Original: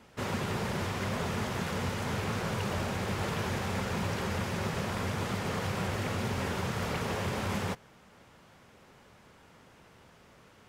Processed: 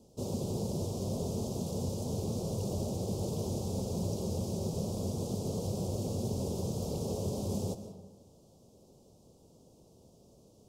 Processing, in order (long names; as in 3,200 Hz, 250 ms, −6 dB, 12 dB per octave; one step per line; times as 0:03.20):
Chebyshev band-stop filter 520–5,700 Hz, order 2
on a send: convolution reverb RT60 1.1 s, pre-delay 105 ms, DRR 10 dB